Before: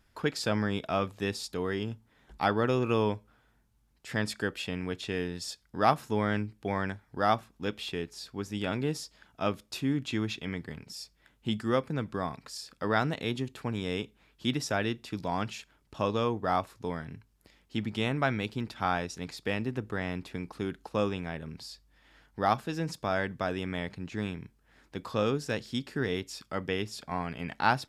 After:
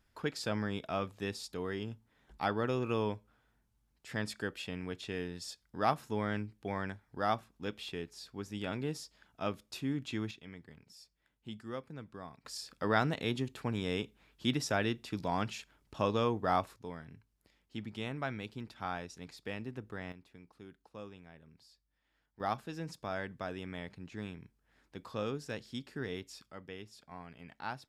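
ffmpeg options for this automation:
-af "asetnsamples=n=441:p=0,asendcmd='10.31 volume volume -14dB;12.45 volume volume -2dB;16.76 volume volume -9.5dB;20.12 volume volume -18.5dB;22.4 volume volume -8.5dB;26.51 volume volume -15dB',volume=-6dB"

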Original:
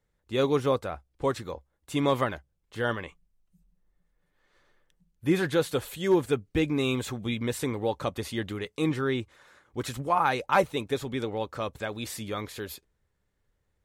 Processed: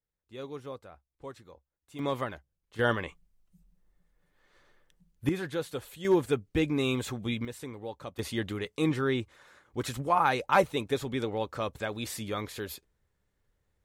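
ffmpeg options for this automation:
-af "asetnsamples=n=441:p=0,asendcmd='1.99 volume volume -6.5dB;2.79 volume volume 2dB;5.29 volume volume -8dB;6.05 volume volume -1.5dB;7.45 volume volume -11dB;8.19 volume volume -0.5dB',volume=-16dB"

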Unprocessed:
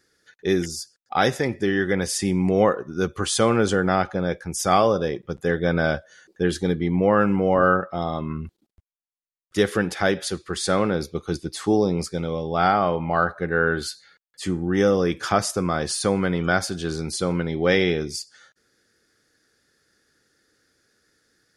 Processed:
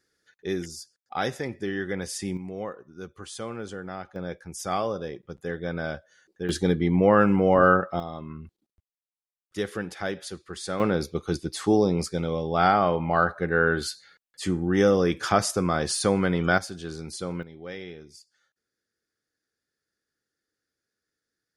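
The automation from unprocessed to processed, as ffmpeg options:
-af "asetnsamples=n=441:p=0,asendcmd='2.37 volume volume -16dB;4.16 volume volume -9.5dB;6.49 volume volume 0dB;8 volume volume -9.5dB;10.8 volume volume -1dB;16.58 volume volume -8.5dB;17.43 volume volume -19dB',volume=-8dB"

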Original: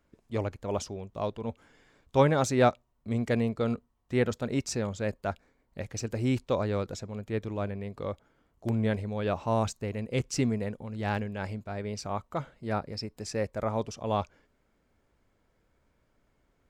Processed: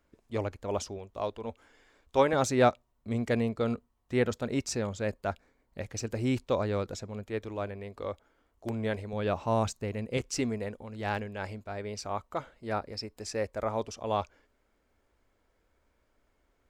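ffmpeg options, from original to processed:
-af "asetnsamples=n=441:p=0,asendcmd='0.98 equalizer g -14;2.33 equalizer g -3.5;7.23 equalizer g -13;9.13 equalizer g -2;10.17 equalizer g -10.5',equalizer=f=150:t=o:w=1:g=-6"

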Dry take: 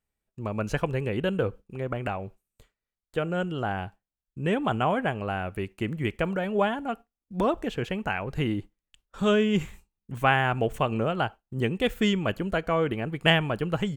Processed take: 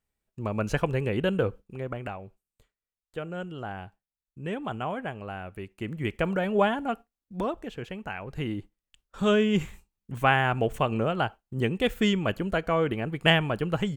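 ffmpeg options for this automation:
-af "volume=16.5dB,afade=t=out:st=1.37:d=0.84:silence=0.398107,afade=t=in:st=5.71:d=0.67:silence=0.375837,afade=t=out:st=6.89:d=0.67:silence=0.375837,afade=t=in:st=8.09:d=1.26:silence=0.446684"

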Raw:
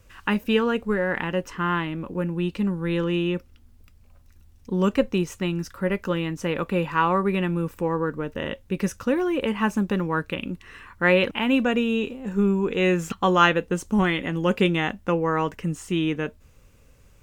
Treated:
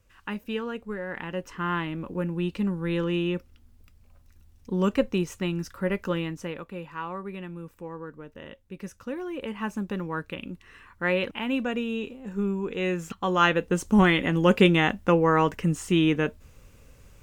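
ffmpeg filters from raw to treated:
-af "volume=13.5dB,afade=t=in:st=1.06:d=0.84:silence=0.421697,afade=t=out:st=6.18:d=0.46:silence=0.281838,afade=t=in:st=8.78:d=1.27:silence=0.446684,afade=t=in:st=13.26:d=0.73:silence=0.354813"

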